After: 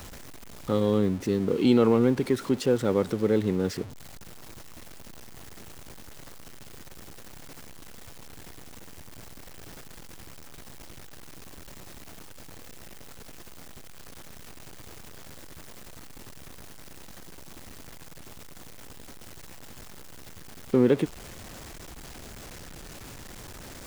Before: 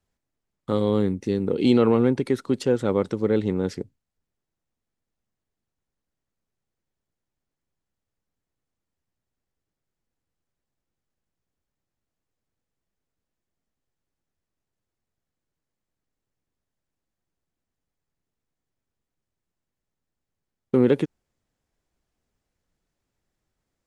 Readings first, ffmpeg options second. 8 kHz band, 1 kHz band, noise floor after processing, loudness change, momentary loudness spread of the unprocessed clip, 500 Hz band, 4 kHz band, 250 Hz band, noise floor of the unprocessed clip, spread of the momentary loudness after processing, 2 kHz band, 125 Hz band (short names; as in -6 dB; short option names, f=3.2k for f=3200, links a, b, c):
n/a, -1.5 dB, -43 dBFS, -2.0 dB, 11 LU, -2.0 dB, +1.0 dB, -2.0 dB, -85 dBFS, 22 LU, +0.5 dB, -1.5 dB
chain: -af "aeval=exprs='val(0)+0.5*0.02*sgn(val(0))':c=same,volume=-2.5dB"